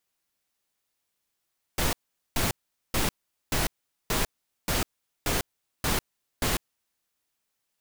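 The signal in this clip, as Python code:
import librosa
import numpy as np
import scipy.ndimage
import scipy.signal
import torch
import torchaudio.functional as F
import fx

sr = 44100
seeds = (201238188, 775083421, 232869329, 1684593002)

y = fx.noise_burst(sr, seeds[0], colour='pink', on_s=0.15, off_s=0.43, bursts=9, level_db=-25.5)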